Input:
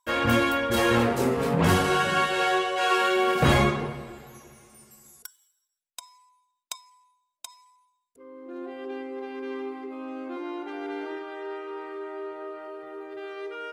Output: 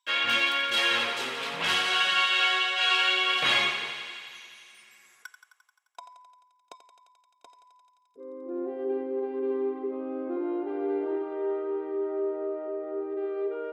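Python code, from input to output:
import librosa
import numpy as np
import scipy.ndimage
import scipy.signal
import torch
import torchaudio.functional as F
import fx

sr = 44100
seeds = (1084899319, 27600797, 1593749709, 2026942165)

y = fx.echo_thinned(x, sr, ms=87, feedback_pct=81, hz=490.0, wet_db=-10)
y = fx.filter_sweep_bandpass(y, sr, from_hz=3100.0, to_hz=420.0, start_s=4.68, end_s=6.51, q=1.8)
y = F.gain(torch.from_numpy(y), 7.5).numpy()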